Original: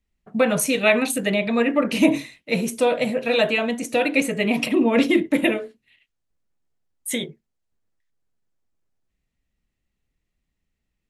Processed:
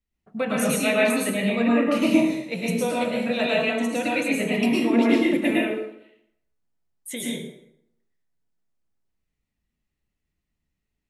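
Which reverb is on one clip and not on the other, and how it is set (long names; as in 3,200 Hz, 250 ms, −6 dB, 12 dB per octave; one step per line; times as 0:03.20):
dense smooth reverb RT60 0.77 s, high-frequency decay 0.7×, pre-delay 95 ms, DRR −4.5 dB
level −8 dB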